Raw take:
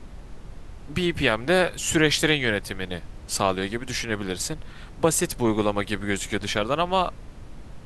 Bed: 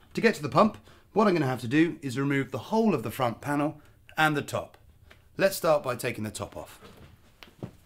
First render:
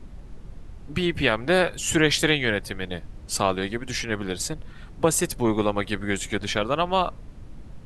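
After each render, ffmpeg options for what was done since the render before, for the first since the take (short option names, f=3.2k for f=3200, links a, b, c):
-af "afftdn=nr=6:nf=-43"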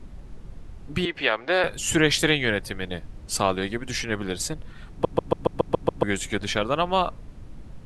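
-filter_complex "[0:a]asettb=1/sr,asplit=3[a][b][c];[a]atrim=end=1.054[d];[b]atrim=start=1.05:end=1.64,asetpts=PTS-STARTPTS,afade=t=in:d=0.004:c=qsin,afade=t=out:st=0.586:d=0.004:c=qsin,acrossover=split=360 6100:gain=0.112 1 0.0708[e][f][g];[e][f][g]amix=inputs=3:normalize=0[h];[c]atrim=start=1.636[i];[d][h]acrossfade=d=0.004:c1=hsin:c2=qsin[j];[j][i]acrossfade=d=0.004:c1=qsin:c2=hsin,asplit=9[k][l][m][n][o][p][q][r][s];[k]atrim=end=5.052[t];[l]atrim=start=4.908:end=5.052[u];[m]atrim=start=4.908:end=5.052[v];[n]atrim=start=4.908:end=5.052[w];[o]atrim=start=4.908:end=5.052[x];[p]atrim=start=4.908:end=5.052[y];[q]atrim=start=4.908:end=5.052[z];[r]atrim=start=4.908:end=5.052[aa];[s]atrim=start=6.028[ab];[t][u]acrossfade=d=0.004:c1=hsin:c2=hsin[ac];[ac][v]acrossfade=d=0.004:c1=hsin:c2=hsin[ad];[ad][w]acrossfade=d=0.004:c1=hsin:c2=hsin[ae];[ae][x]acrossfade=d=0.004:c1=hsin:c2=hsin[af];[af][y]acrossfade=d=0.004:c1=hsin:c2=hsin[ag];[ag][z]acrossfade=d=0.004:c1=hsin:c2=hsin[ah];[ah][aa]acrossfade=d=0.004:c1=hsin:c2=hsin[ai];[ai][ab]acrossfade=d=0.004:c1=hsin:c2=hsin"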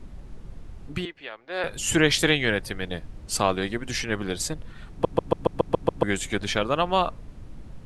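-filter_complex "[0:a]asplit=3[a][b][c];[a]atrim=end=1.15,asetpts=PTS-STARTPTS,afade=t=out:st=0.86:d=0.29:silence=0.16788[d];[b]atrim=start=1.15:end=1.49,asetpts=PTS-STARTPTS,volume=-15.5dB[e];[c]atrim=start=1.49,asetpts=PTS-STARTPTS,afade=t=in:d=0.29:silence=0.16788[f];[d][e][f]concat=n=3:v=0:a=1"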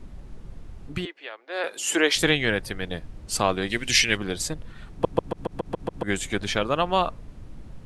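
-filter_complex "[0:a]asettb=1/sr,asplit=3[a][b][c];[a]atrim=end=1.064[d];[b]atrim=start=1.06:end=2.16,asetpts=PTS-STARTPTS,afade=t=in:d=0.004:c=qsin,afade=t=out:st=1.096:d=0.004:c=qsin,highpass=f=310:w=0.5412,highpass=f=310:w=1.3066[e];[c]atrim=start=2.156[f];[d][e]acrossfade=d=0.004:c1=hsin:c2=qsin[g];[g][f]acrossfade=d=0.004:c1=qsin:c2=hsin,asplit=3[h][i][j];[h]afade=t=out:st=3.69:d=0.02[k];[i]highshelf=f=1.7k:t=q:w=1.5:g=10,afade=t=in:st=3.69:d=0.02,afade=t=out:st=4.16:d=0.02[l];[j]afade=t=in:st=4.16:d=0.02[m];[k][l][m]amix=inputs=3:normalize=0,asplit=3[n][o][p];[n]afade=t=out:st=5.2:d=0.02[q];[o]acompressor=threshold=-23dB:ratio=6:attack=3.2:release=140:knee=1:detection=peak,afade=t=in:st=5.2:d=0.02,afade=t=out:st=6.07:d=0.02[r];[p]afade=t=in:st=6.07:d=0.02[s];[q][r][s]amix=inputs=3:normalize=0"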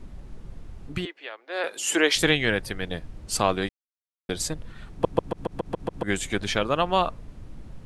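-filter_complex "[0:a]asplit=3[a][b][c];[a]atrim=end=3.69,asetpts=PTS-STARTPTS,afade=t=out:st=3.686:d=0.004:c=hsin[d];[b]atrim=start=3.69:end=4.29,asetpts=PTS-STARTPTS,volume=0[e];[c]atrim=start=4.29,asetpts=PTS-STARTPTS,afade=t=in:d=0.004:c=hsin[f];[d][e][f]concat=n=3:v=0:a=1"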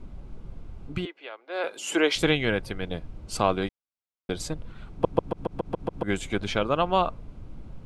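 -af "highshelf=f=4.6k:g=-11,bandreject=f=1.8k:w=6.2"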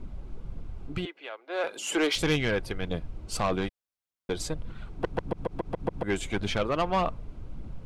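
-af "asoftclip=type=tanh:threshold=-19dB,aphaser=in_gain=1:out_gain=1:delay=3.2:decay=0.27:speed=1.7:type=triangular"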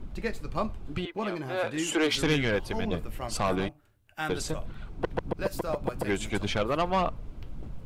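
-filter_complex "[1:a]volume=-10dB[a];[0:a][a]amix=inputs=2:normalize=0"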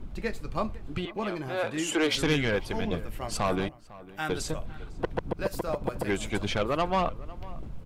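-filter_complex "[0:a]asplit=2[a][b];[b]adelay=501.5,volume=-19dB,highshelf=f=4k:g=-11.3[c];[a][c]amix=inputs=2:normalize=0"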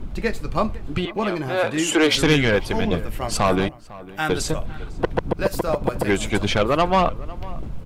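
-af "volume=8.5dB"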